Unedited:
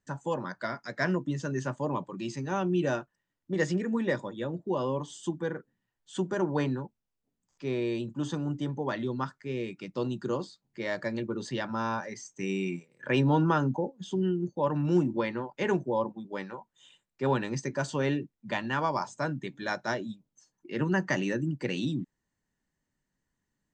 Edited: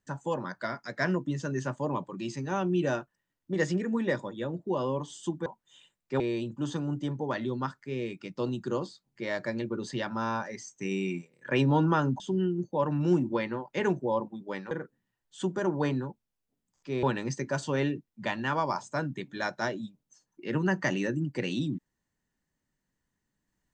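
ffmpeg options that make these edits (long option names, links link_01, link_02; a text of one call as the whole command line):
ffmpeg -i in.wav -filter_complex "[0:a]asplit=6[link_01][link_02][link_03][link_04][link_05][link_06];[link_01]atrim=end=5.462[link_07];[link_02]atrim=start=16.548:end=17.292[link_08];[link_03]atrim=start=7.778:end=13.782[link_09];[link_04]atrim=start=14.038:end=16.552[link_10];[link_05]atrim=start=5.458:end=7.782[link_11];[link_06]atrim=start=17.288[link_12];[link_07][link_08]acrossfade=duration=0.004:curve1=hsin:curve2=hsin[link_13];[link_13][link_09]acrossfade=duration=0.004:curve1=hsin:curve2=hsin[link_14];[link_14][link_10]acrossfade=duration=0.004:curve1=hsin:curve2=hsin[link_15];[link_15][link_11]acrossfade=duration=0.004:curve1=hsin:curve2=hsin[link_16];[link_16][link_12]acrossfade=duration=0.004:curve1=hsin:curve2=hsin" out.wav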